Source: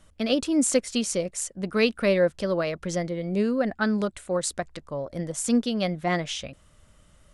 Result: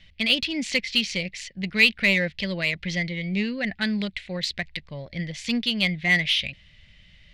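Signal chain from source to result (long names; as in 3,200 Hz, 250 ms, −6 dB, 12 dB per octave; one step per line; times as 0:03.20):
drawn EQ curve 190 Hz 0 dB, 270 Hz −9 dB, 510 Hz −11 dB, 800 Hz −9 dB, 1,300 Hz −15 dB, 2,000 Hz +13 dB, 4,400 Hz +8 dB, 9,000 Hz −24 dB
in parallel at −4.5 dB: soft clipping −22.5 dBFS, distortion −7 dB
on the sum: level −1.5 dB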